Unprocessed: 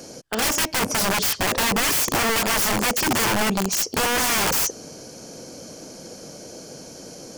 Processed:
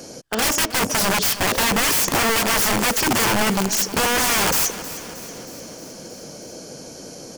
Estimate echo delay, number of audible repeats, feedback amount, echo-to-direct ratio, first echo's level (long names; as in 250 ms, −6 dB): 315 ms, 5, 57%, −13.5 dB, −15.0 dB